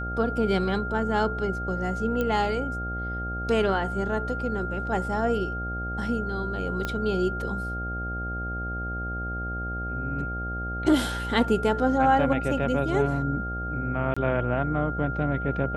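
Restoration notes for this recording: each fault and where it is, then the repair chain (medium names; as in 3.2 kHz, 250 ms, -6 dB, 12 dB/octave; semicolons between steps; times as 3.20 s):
buzz 60 Hz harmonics 13 -33 dBFS
whine 1.4 kHz -32 dBFS
2.21 s: pop -15 dBFS
6.85 s: pop -15 dBFS
14.14–14.16 s: dropout 25 ms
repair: de-click; de-hum 60 Hz, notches 13; band-stop 1.4 kHz, Q 30; interpolate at 14.14 s, 25 ms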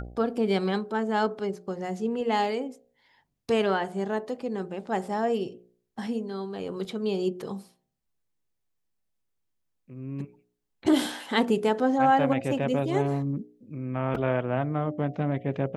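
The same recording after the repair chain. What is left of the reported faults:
6.85 s: pop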